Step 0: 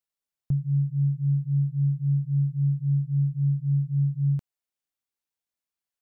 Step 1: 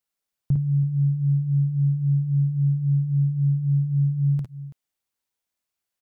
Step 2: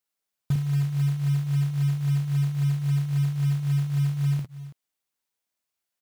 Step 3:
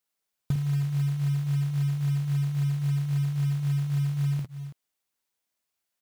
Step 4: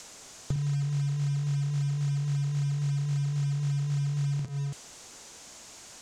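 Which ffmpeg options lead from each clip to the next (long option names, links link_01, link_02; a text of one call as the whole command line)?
ffmpeg -i in.wav -af "aecho=1:1:54|63|331:0.668|0.251|0.158,volume=3.5dB" out.wav
ffmpeg -i in.wav -af "lowshelf=frequency=110:gain=-7.5,acrusher=bits=5:mode=log:mix=0:aa=0.000001" out.wav
ffmpeg -i in.wav -af "acompressor=threshold=-25dB:ratio=6,volume=1.5dB" out.wav
ffmpeg -i in.wav -filter_complex "[0:a]aeval=exprs='val(0)+0.5*0.00794*sgn(val(0))':channel_layout=same,lowpass=frequency=6900:width_type=q:width=2.6,acrossover=split=200|1000[link_01][link_02][link_03];[link_01]acompressor=threshold=-36dB:ratio=4[link_04];[link_02]acompressor=threshold=-47dB:ratio=4[link_05];[link_03]acompressor=threshold=-53dB:ratio=4[link_06];[link_04][link_05][link_06]amix=inputs=3:normalize=0,volume=5.5dB" out.wav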